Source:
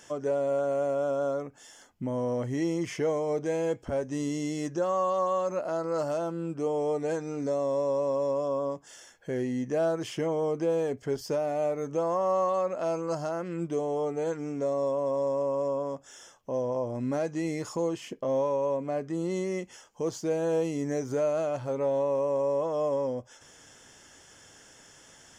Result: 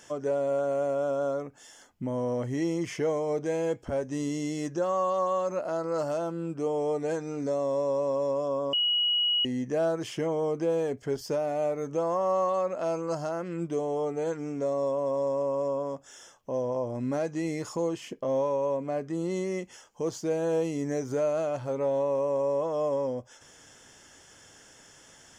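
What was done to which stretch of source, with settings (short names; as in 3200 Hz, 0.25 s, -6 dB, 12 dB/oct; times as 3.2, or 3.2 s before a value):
8.73–9.45 bleep 2910 Hz -22.5 dBFS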